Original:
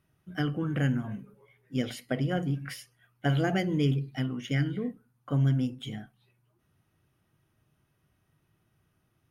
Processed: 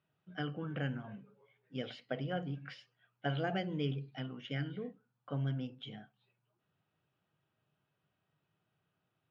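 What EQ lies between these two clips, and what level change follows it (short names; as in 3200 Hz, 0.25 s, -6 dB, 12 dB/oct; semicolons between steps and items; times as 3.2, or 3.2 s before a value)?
speaker cabinet 180–4100 Hz, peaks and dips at 240 Hz -7 dB, 340 Hz -7 dB, 1100 Hz -3 dB, 2000 Hz -6 dB; -4.5 dB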